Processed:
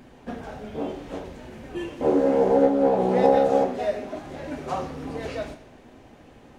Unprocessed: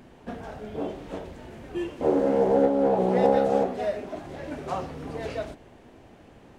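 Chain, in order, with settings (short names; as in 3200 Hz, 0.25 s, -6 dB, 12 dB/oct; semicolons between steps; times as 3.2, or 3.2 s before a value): on a send: high shelf 5000 Hz +10.5 dB + reverb RT60 1.0 s, pre-delay 3 ms, DRR 6 dB; on the sum: gain +1 dB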